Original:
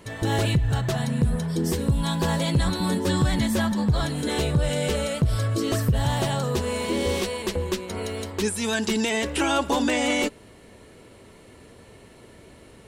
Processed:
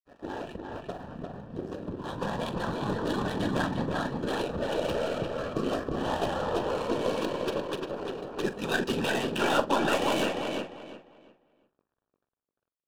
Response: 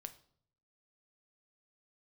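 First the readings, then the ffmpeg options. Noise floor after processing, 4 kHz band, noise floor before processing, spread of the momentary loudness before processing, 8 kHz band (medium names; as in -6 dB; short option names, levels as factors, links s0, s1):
under -85 dBFS, -6.5 dB, -49 dBFS, 5 LU, -13.0 dB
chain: -filter_complex "[0:a]highpass=260,equalizer=f=12000:t=o:w=0.75:g=-7.5,bandreject=f=50:t=h:w=6,bandreject=f=100:t=h:w=6,bandreject=f=150:t=h:w=6,bandreject=f=200:t=h:w=6,bandreject=f=250:t=h:w=6,bandreject=f=300:t=h:w=6,bandreject=f=350:t=h:w=6,bandreject=f=400:t=h:w=6,bandreject=f=450:t=h:w=6,dynaudnorm=f=470:g=9:m=2.11,afftfilt=real='hypot(re,im)*cos(2*PI*random(0))':imag='hypot(re,im)*sin(2*PI*random(1))':win_size=512:overlap=0.75,asplit=2[s0][s1];[s1]aeval=exprs='sgn(val(0))*max(abs(val(0))-0.0133,0)':c=same,volume=0.501[s2];[s0][s2]amix=inputs=2:normalize=0,aeval=exprs='0.531*(cos(1*acos(clip(val(0)/0.531,-1,1)))-cos(1*PI/2))+0.0299*(cos(4*acos(clip(val(0)/0.531,-1,1)))-cos(4*PI/2))+0.00335*(cos(7*acos(clip(val(0)/0.531,-1,1)))-cos(7*PI/2))':c=same,adynamicsmooth=sensitivity=3:basefreq=670,aeval=exprs='sgn(val(0))*max(abs(val(0))-0.00251,0)':c=same,asuperstop=centerf=2100:order=4:qfactor=4.5,asplit=2[s3][s4];[s4]adelay=44,volume=0.211[s5];[s3][s5]amix=inputs=2:normalize=0,asplit=2[s6][s7];[s7]adelay=349,lowpass=f=3900:p=1,volume=0.668,asplit=2[s8][s9];[s9]adelay=349,lowpass=f=3900:p=1,volume=0.26,asplit=2[s10][s11];[s11]adelay=349,lowpass=f=3900:p=1,volume=0.26,asplit=2[s12][s13];[s13]adelay=349,lowpass=f=3900:p=1,volume=0.26[s14];[s8][s10][s12][s14]amix=inputs=4:normalize=0[s15];[s6][s15]amix=inputs=2:normalize=0,volume=0.531"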